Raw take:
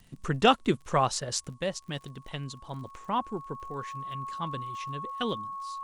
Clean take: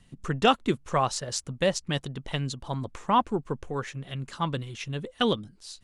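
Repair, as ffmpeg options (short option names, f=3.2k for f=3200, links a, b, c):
-af "adeclick=t=4,bandreject=f=1.1k:w=30,agate=range=-21dB:threshold=-43dB,asetnsamples=n=441:p=0,asendcmd='1.49 volume volume 7dB',volume=0dB"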